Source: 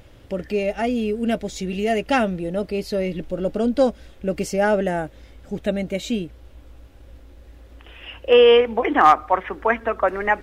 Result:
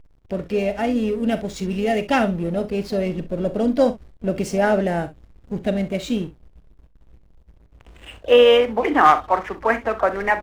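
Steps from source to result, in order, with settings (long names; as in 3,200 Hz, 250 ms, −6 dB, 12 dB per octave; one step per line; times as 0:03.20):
dynamic equaliser 150 Hz, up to +4 dB, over −42 dBFS, Q 1.7
slack as between gear wheels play −34.5 dBFS
pitch-shifted copies added +3 semitones −16 dB
on a send: ambience of single reflections 41 ms −13 dB, 65 ms −15.5 dB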